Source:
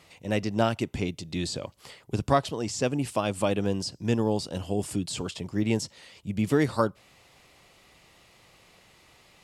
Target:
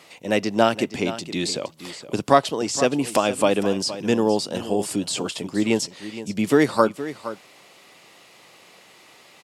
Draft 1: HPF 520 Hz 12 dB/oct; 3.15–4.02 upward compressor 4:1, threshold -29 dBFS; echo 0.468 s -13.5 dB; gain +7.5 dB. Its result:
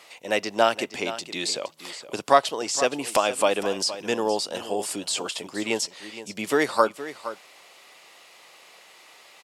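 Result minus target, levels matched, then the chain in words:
250 Hz band -6.5 dB
HPF 230 Hz 12 dB/oct; 3.15–4.02 upward compressor 4:1, threshold -29 dBFS; echo 0.468 s -13.5 dB; gain +7.5 dB

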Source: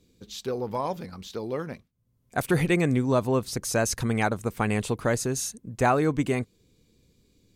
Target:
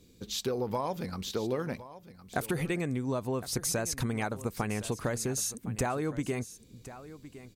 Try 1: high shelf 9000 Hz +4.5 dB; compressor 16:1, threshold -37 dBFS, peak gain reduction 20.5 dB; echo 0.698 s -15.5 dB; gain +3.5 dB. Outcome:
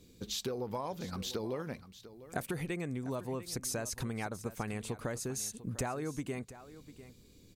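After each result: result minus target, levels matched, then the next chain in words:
echo 0.363 s early; compressor: peak gain reduction +5.5 dB
high shelf 9000 Hz +4.5 dB; compressor 16:1, threshold -37 dBFS, peak gain reduction 20.5 dB; echo 1.061 s -15.5 dB; gain +3.5 dB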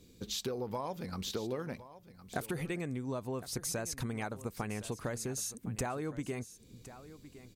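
compressor: peak gain reduction +5.5 dB
high shelf 9000 Hz +4.5 dB; compressor 16:1, threshold -31 dBFS, peak gain reduction 15 dB; echo 1.061 s -15.5 dB; gain +3.5 dB

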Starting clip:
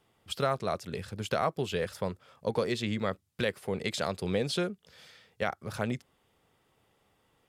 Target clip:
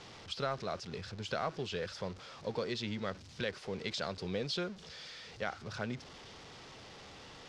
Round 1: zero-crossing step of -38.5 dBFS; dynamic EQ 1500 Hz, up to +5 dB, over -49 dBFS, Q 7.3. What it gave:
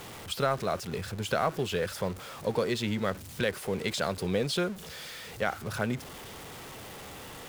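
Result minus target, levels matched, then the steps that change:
8000 Hz band +3.5 dB
add after dynamic EQ: ladder low-pass 6200 Hz, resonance 40%

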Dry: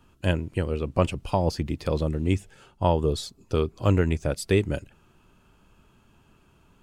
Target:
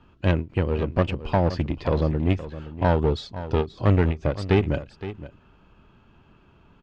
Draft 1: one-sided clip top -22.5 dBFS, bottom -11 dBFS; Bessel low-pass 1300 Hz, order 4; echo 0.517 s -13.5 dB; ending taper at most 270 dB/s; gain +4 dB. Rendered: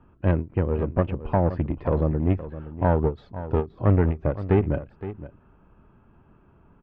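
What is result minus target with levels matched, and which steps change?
4000 Hz band -16.5 dB
change: Bessel low-pass 3200 Hz, order 4

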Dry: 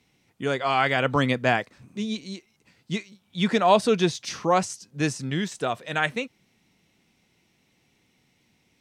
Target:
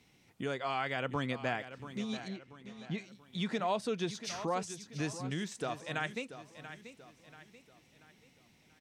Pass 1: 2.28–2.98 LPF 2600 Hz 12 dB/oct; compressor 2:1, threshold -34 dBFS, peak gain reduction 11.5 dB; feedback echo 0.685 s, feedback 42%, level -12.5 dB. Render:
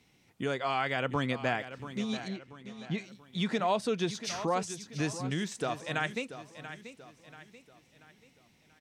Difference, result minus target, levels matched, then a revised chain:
compressor: peak gain reduction -4 dB
2.28–2.98 LPF 2600 Hz 12 dB/oct; compressor 2:1, threshold -42 dBFS, peak gain reduction 15.5 dB; feedback echo 0.685 s, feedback 42%, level -12.5 dB

